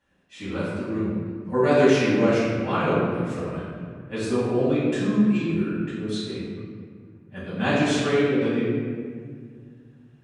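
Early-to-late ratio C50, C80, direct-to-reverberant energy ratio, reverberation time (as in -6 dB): -2.0 dB, 0.0 dB, -13.0 dB, 2.0 s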